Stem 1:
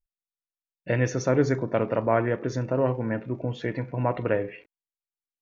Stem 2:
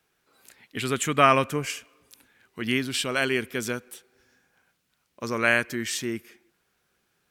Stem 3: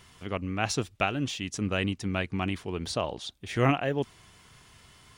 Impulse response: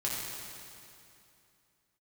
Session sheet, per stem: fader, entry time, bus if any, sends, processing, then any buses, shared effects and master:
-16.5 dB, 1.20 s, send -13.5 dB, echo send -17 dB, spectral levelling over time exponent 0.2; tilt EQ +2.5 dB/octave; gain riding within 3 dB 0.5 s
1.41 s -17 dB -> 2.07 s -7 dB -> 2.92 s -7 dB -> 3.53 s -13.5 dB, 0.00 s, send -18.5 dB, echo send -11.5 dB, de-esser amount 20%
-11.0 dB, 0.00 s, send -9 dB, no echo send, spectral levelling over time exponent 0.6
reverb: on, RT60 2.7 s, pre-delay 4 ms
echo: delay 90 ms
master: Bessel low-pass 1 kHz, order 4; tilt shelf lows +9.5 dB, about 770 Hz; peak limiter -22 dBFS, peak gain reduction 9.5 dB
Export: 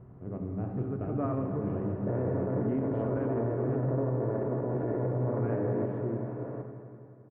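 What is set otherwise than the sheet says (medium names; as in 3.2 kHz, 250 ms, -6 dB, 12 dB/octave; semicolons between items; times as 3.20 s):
stem 3 -11.0 dB -> -22.5 dB; reverb return +10.0 dB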